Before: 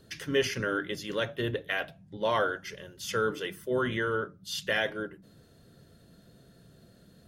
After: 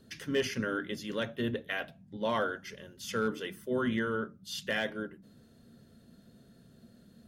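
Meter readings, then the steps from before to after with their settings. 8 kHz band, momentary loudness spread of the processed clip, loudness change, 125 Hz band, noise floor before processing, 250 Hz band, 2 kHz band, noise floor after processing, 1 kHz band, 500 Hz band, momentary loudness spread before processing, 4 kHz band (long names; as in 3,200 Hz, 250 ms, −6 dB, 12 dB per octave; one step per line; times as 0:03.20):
−4.0 dB, 10 LU, −3.0 dB, −3.0 dB, −59 dBFS, +1.5 dB, −4.0 dB, −60 dBFS, −4.0 dB, −3.5 dB, 11 LU, −4.0 dB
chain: parametric band 230 Hz +12.5 dB 0.29 octaves
hard clipping −17 dBFS, distortion −30 dB
level −4 dB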